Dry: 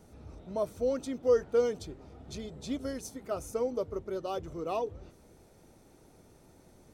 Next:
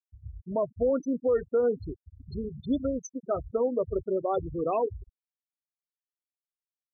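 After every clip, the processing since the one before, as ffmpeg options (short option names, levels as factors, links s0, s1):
-af "afftfilt=real='re*gte(hypot(re,im),0.0282)':imag='im*gte(hypot(re,im),0.0282)':win_size=1024:overlap=0.75,alimiter=level_in=1.19:limit=0.0631:level=0:latency=1:release=92,volume=0.841,volume=2.37"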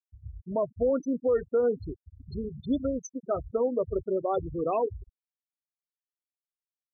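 -af anull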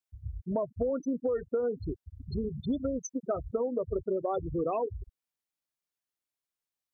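-af "acompressor=threshold=0.0282:ratio=6,volume=1.5"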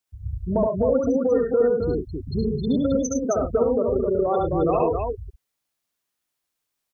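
-af "aecho=1:1:69.97|105|265.3:0.794|0.447|0.631,volume=2.24"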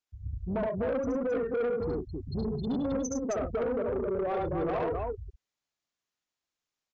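-af "asoftclip=type=tanh:threshold=0.1,aresample=16000,aresample=44100,volume=0.531"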